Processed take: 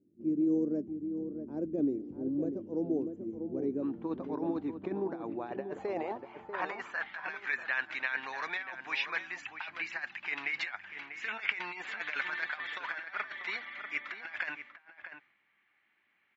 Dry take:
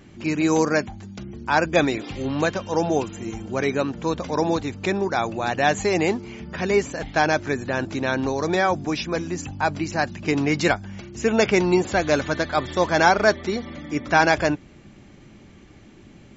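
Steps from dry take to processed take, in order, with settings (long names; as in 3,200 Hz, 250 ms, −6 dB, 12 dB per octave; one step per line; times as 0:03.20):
noise gate −39 dBFS, range −11 dB
flat-topped bell 1,800 Hz −16 dB 2.8 octaves, from 0:02.56 −9.5 dB, from 0:03.82 +9 dB
compressor whose output falls as the input rises −19 dBFS, ratio −0.5
band-pass filter sweep 300 Hz → 2,000 Hz, 0:05.30–0:07.32
slap from a distant wall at 110 metres, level −8 dB
one half of a high-frequency compander decoder only
level −8.5 dB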